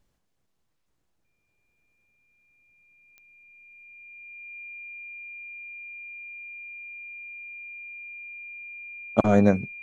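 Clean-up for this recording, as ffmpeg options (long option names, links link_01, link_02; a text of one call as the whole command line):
ffmpeg -i in.wav -af "adeclick=threshold=4,bandreject=frequency=2400:width=30" out.wav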